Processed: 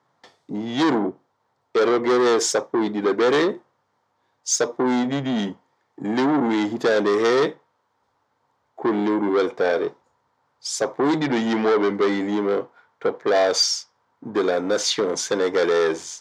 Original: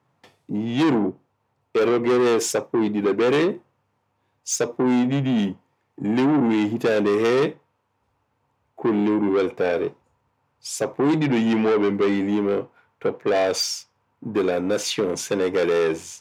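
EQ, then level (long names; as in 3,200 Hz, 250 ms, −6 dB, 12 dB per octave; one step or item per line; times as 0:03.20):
high-frequency loss of the air 150 metres
RIAA equalisation recording
parametric band 2,600 Hz −12.5 dB 0.42 octaves
+4.5 dB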